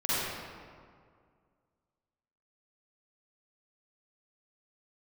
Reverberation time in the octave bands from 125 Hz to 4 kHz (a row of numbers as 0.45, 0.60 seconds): 2.3, 2.2, 2.1, 2.0, 1.6, 1.1 seconds